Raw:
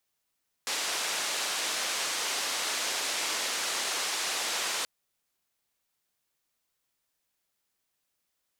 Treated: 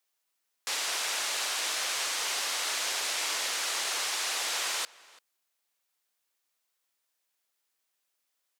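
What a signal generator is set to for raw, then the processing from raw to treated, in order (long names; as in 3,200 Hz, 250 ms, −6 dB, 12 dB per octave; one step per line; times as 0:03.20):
band-limited noise 410–7,000 Hz, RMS −31.5 dBFS 4.18 s
high-pass filter 200 Hz 12 dB per octave
low-shelf EQ 300 Hz −10.5 dB
slap from a distant wall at 58 metres, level −21 dB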